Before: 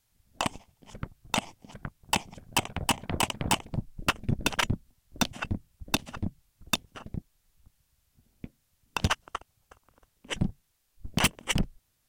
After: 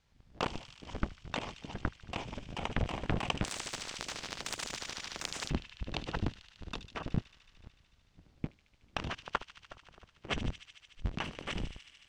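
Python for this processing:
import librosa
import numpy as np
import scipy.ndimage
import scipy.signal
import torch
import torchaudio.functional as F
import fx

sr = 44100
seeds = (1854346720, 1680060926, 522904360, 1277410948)

y = fx.cycle_switch(x, sr, every=3, mode='inverted')
y = fx.over_compress(y, sr, threshold_db=-32.0, ratio=-1.0)
y = fx.air_absorb(y, sr, metres=150.0)
y = fx.echo_wet_highpass(y, sr, ms=74, feedback_pct=83, hz=3000.0, wet_db=-9.0)
y = fx.spectral_comp(y, sr, ratio=10.0, at=(3.44, 5.5))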